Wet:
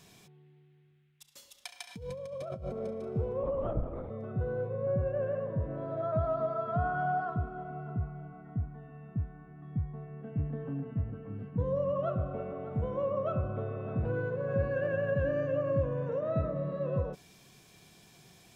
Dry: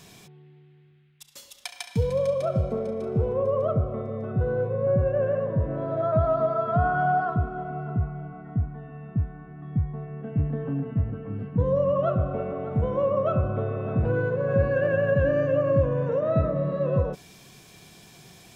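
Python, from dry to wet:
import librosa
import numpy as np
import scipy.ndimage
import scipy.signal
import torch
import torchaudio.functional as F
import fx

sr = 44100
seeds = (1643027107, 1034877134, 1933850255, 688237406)

y = fx.over_compress(x, sr, threshold_db=-31.0, ratio=-1.0, at=(1.88, 2.88), fade=0.02)
y = fx.lpc_vocoder(y, sr, seeds[0], excitation='whisper', order=10, at=(3.43, 4.1))
y = y * librosa.db_to_amplitude(-8.0)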